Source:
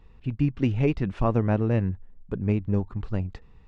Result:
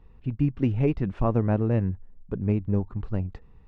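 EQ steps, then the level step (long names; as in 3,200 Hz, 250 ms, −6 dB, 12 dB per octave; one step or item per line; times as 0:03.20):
high-shelf EQ 2,100 Hz −9.5 dB
0.0 dB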